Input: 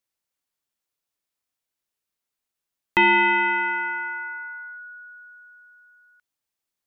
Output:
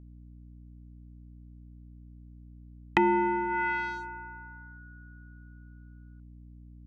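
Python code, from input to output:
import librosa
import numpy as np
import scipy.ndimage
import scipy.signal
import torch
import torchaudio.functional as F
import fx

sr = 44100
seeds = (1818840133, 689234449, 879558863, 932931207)

y = fx.wiener(x, sr, points=25)
y = fx.add_hum(y, sr, base_hz=60, snr_db=20)
y = fx.env_lowpass_down(y, sr, base_hz=700.0, full_db=-20.5)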